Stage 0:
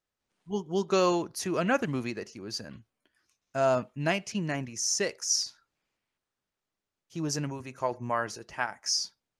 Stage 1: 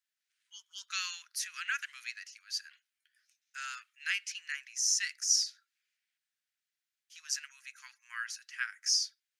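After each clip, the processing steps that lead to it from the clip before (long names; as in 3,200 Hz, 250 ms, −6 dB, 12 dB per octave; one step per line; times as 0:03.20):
Butterworth high-pass 1,500 Hz 48 dB per octave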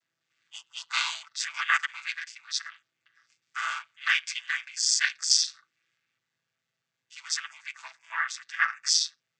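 channel vocoder with a chord as carrier minor triad, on A2
level +7.5 dB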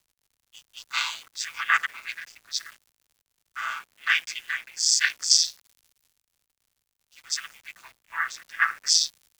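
surface crackle 150 per second −43 dBFS
bit reduction 8 bits
multiband upward and downward expander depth 40%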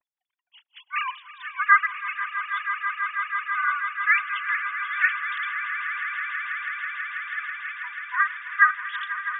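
three sine waves on the formant tracks
high-frequency loss of the air 340 metres
echo that builds up and dies away 163 ms, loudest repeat 8, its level −12.5 dB
level +3.5 dB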